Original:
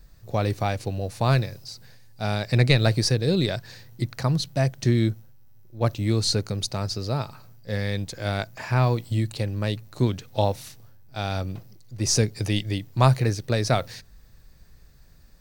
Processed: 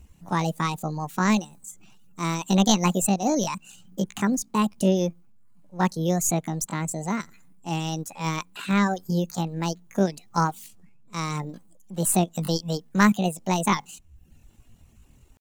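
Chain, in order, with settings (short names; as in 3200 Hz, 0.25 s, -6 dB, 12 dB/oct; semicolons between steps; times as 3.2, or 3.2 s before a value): reverb removal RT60 0.64 s; pitch shift +8 st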